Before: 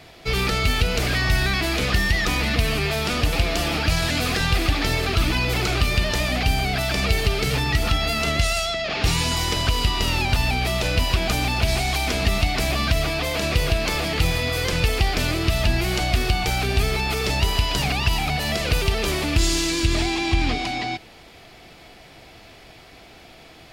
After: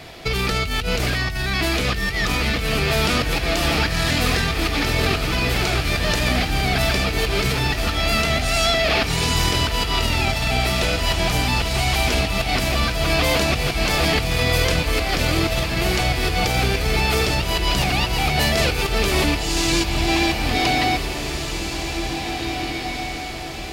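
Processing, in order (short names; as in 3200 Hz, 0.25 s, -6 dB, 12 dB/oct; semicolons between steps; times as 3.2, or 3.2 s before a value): negative-ratio compressor -25 dBFS, ratio -1; on a send: diffused feedback echo 1.988 s, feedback 47%, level -6 dB; on the sum: gain +3.5 dB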